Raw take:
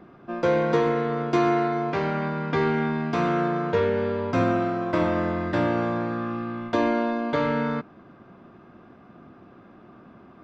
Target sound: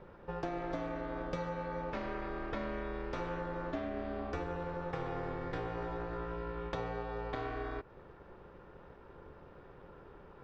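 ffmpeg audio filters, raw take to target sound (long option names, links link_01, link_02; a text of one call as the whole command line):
ffmpeg -i in.wav -af "acompressor=threshold=-31dB:ratio=6,aeval=exprs='val(0)*sin(2*PI*180*n/s)':channel_layout=same,volume=-2dB" out.wav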